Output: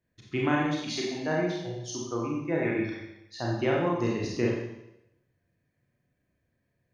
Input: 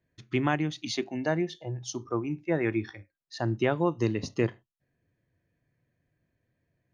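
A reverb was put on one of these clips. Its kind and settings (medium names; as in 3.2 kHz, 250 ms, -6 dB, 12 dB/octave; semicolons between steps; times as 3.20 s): Schroeder reverb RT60 0.85 s, combs from 30 ms, DRR -3.5 dB; trim -4 dB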